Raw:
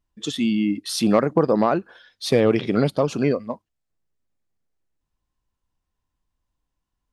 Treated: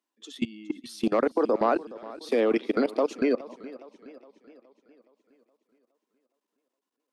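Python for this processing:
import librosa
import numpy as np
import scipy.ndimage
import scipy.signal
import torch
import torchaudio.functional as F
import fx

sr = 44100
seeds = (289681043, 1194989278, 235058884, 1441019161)

y = scipy.signal.sosfilt(scipy.signal.butter(12, 230.0, 'highpass', fs=sr, output='sos'), x)
y = fx.level_steps(y, sr, step_db=22)
y = fx.echo_warbled(y, sr, ms=417, feedback_pct=52, rate_hz=2.8, cents=75, wet_db=-18)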